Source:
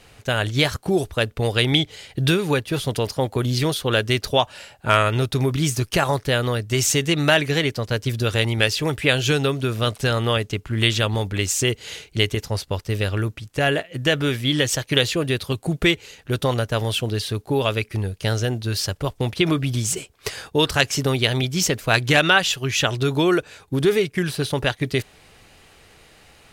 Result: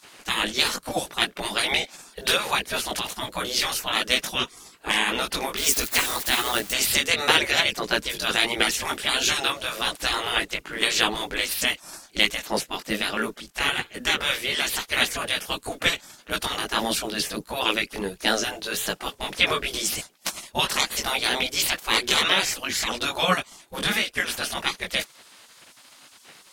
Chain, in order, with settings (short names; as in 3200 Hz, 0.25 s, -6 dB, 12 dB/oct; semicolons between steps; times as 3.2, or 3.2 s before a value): 5.57–6.72 switching spikes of -22.5 dBFS; chorus voices 4, 1.5 Hz, delay 19 ms, depth 3 ms; spectral gate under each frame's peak -15 dB weak; gain +8.5 dB